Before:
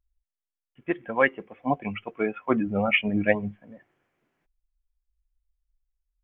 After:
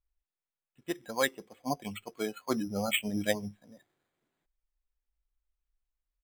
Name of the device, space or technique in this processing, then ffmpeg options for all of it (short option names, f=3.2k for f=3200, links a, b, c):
crushed at another speed: -af "asetrate=35280,aresample=44100,acrusher=samples=10:mix=1:aa=0.000001,asetrate=55125,aresample=44100,volume=-7.5dB"